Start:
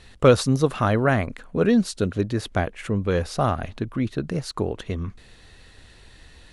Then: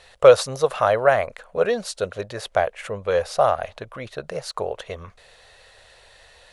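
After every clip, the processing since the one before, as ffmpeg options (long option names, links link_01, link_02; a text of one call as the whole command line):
ffmpeg -i in.wav -af "lowshelf=frequency=400:width_type=q:width=3:gain=-11.5,volume=1dB" out.wav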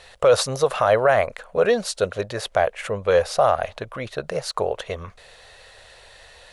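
ffmpeg -i in.wav -af "alimiter=limit=-11dB:level=0:latency=1:release=18,volume=3.5dB" out.wav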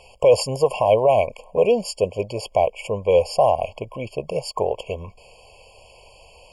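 ffmpeg -i in.wav -af "afftfilt=real='re*eq(mod(floor(b*sr/1024/1100),2),0)':imag='im*eq(mod(floor(b*sr/1024/1100),2),0)':win_size=1024:overlap=0.75,volume=1.5dB" out.wav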